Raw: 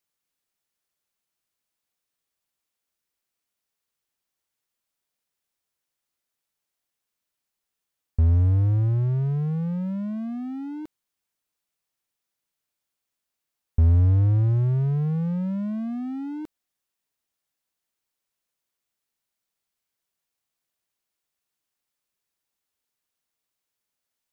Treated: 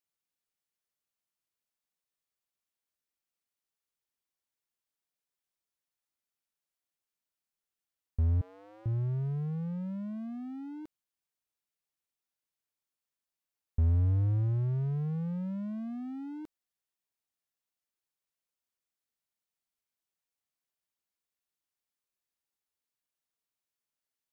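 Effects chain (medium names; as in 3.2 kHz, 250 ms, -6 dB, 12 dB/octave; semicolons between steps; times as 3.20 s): 8.41–8.86 s: high-pass 440 Hz 24 dB/octave; trim -8.5 dB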